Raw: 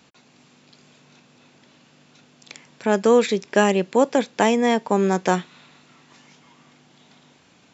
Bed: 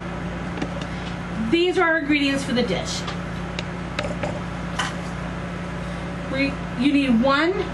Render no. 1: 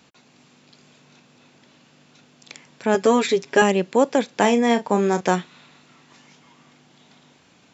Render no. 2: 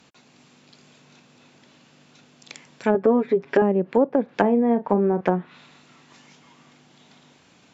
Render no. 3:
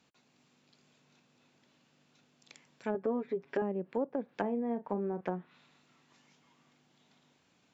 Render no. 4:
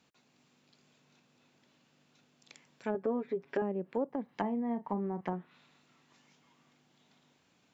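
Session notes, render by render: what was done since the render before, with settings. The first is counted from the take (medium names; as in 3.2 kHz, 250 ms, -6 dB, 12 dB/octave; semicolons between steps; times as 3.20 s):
2.94–3.62 s: comb 7.3 ms, depth 70%; 4.25–5.21 s: doubling 34 ms -10 dB
dynamic bell 1.7 kHz, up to +4 dB, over -37 dBFS, Q 0.91; low-pass that closes with the level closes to 580 Hz, closed at -14.5 dBFS
trim -14.5 dB
4.09–5.33 s: comb 1 ms, depth 48%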